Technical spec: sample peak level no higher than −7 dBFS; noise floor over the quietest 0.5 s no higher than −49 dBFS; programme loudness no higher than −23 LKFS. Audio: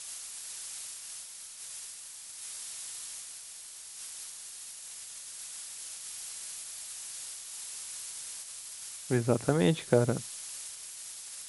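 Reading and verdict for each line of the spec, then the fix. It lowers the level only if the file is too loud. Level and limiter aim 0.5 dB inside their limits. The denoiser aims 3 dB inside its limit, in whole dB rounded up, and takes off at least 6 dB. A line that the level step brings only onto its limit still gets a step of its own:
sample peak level −9.0 dBFS: in spec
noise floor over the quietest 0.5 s −47 dBFS: out of spec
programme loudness −35.5 LKFS: in spec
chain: broadband denoise 6 dB, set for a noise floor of −47 dBFS

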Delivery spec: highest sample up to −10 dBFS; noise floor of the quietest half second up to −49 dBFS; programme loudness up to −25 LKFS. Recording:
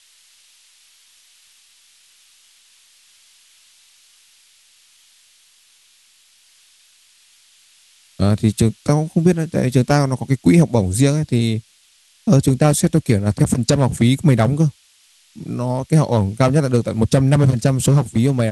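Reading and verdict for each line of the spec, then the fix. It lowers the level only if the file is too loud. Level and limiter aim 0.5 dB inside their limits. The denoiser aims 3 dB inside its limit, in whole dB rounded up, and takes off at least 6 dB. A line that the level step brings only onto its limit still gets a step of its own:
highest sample −3.0 dBFS: out of spec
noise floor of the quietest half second −55 dBFS: in spec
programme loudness −17.0 LKFS: out of spec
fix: level −8.5 dB

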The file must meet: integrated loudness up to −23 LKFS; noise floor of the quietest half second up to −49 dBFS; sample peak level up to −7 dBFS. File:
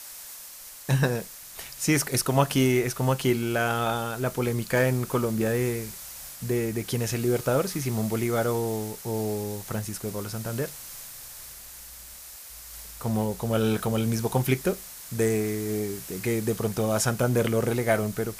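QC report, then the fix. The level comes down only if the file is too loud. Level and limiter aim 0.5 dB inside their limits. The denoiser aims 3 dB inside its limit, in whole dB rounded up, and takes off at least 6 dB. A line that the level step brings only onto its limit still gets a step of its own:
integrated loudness −26.5 LKFS: in spec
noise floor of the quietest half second −44 dBFS: out of spec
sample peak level −9.0 dBFS: in spec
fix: broadband denoise 8 dB, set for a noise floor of −44 dBFS

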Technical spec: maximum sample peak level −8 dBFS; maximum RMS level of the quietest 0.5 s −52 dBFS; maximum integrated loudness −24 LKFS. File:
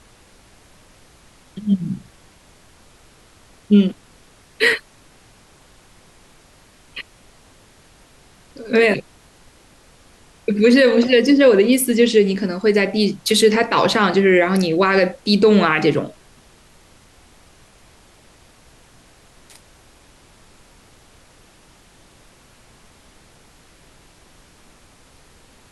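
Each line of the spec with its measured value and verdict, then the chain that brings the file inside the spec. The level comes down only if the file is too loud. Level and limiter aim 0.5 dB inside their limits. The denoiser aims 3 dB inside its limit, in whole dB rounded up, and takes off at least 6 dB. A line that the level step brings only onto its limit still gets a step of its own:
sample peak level −4.0 dBFS: out of spec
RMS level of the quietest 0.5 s −50 dBFS: out of spec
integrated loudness −16.0 LKFS: out of spec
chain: level −8.5 dB

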